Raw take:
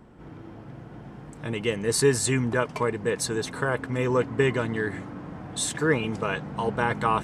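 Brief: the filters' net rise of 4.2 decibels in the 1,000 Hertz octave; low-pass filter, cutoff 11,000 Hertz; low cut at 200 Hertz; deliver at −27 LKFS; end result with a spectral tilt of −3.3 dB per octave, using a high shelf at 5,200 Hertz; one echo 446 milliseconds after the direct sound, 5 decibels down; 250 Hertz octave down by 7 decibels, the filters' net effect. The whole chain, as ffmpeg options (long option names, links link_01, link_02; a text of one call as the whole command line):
ffmpeg -i in.wav -af "highpass=200,lowpass=11000,equalizer=frequency=250:width_type=o:gain=-7.5,equalizer=frequency=1000:width_type=o:gain=5.5,highshelf=frequency=5200:gain=-4.5,aecho=1:1:446:0.562,volume=-0.5dB" out.wav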